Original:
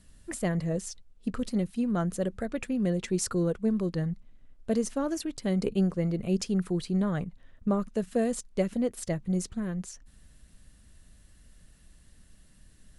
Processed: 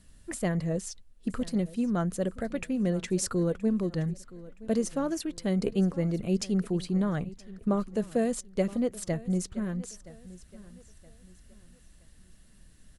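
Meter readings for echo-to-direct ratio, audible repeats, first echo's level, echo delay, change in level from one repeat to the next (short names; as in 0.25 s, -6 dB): -18.5 dB, 2, -19.0 dB, 0.971 s, -9.5 dB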